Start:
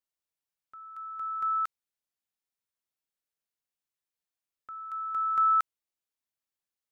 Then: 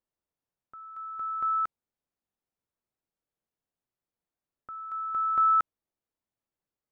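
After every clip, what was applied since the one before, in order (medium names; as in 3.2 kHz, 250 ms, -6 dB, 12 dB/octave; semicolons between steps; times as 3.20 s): tilt shelf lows +9.5 dB, about 1.5 kHz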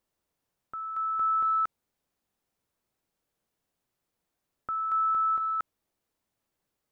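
compressor with a negative ratio -27 dBFS, ratio -0.5; peak limiter -29.5 dBFS, peak gain reduction 8.5 dB; trim +7 dB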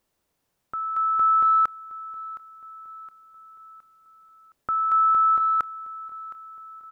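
feedback delay 716 ms, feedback 52%, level -18 dB; trim +7 dB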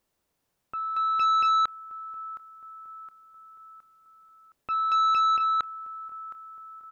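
transformer saturation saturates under 1.2 kHz; trim -2 dB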